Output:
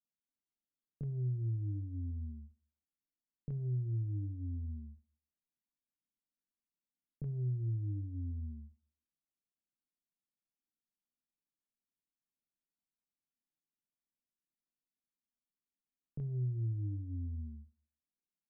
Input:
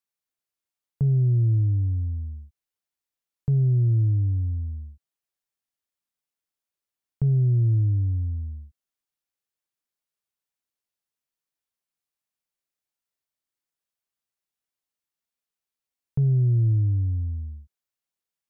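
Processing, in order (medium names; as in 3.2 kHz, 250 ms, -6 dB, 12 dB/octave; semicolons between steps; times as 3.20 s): graphic EQ 125/250/500 Hz -4/+6/-10 dB; delay 73 ms -23.5 dB; compression, threshold -31 dBFS, peak gain reduction 9.5 dB; peaking EQ 71 Hz -13 dB 0.65 oct; doubling 26 ms -8 dB; peak limiter -31.5 dBFS, peak gain reduction 8.5 dB; level-controlled noise filter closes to 360 Hz, open at -33 dBFS; reverberation RT60 0.40 s, pre-delay 62 ms, DRR 16.5 dB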